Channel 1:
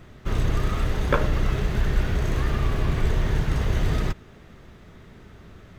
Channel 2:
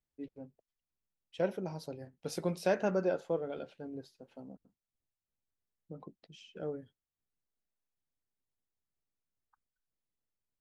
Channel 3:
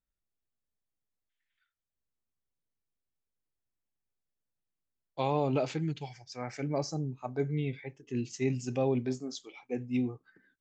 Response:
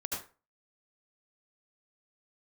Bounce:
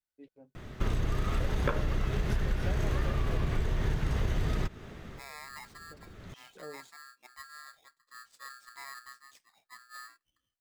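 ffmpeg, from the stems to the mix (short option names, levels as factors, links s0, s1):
-filter_complex "[0:a]adelay=550,volume=1.26[s0];[1:a]lowshelf=f=330:g=-10.5,volume=0.708[s1];[2:a]aeval=exprs='val(0)*sgn(sin(2*PI*1500*n/s))':c=same,volume=0.133,asplit=2[s2][s3];[s3]apad=whole_len=279554[s4];[s0][s4]sidechaincompress=threshold=0.001:ratio=8:attack=21:release=352[s5];[s5][s1][s2]amix=inputs=3:normalize=0,acompressor=threshold=0.0562:ratio=8"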